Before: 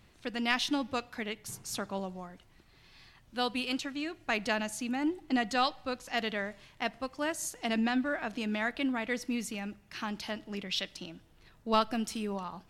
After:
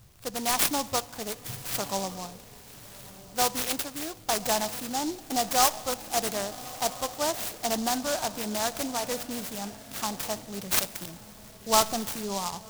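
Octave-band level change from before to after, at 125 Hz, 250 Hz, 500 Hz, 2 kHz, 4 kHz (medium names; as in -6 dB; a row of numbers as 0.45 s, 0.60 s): +4.0 dB, -2.5 dB, +4.5 dB, -1.5 dB, +5.0 dB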